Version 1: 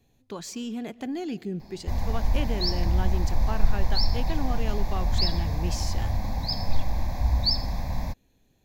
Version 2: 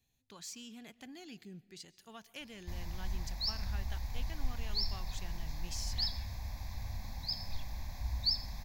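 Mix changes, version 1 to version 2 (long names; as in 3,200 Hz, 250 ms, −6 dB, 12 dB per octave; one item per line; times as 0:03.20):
background: entry +0.80 s
master: add guitar amp tone stack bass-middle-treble 5-5-5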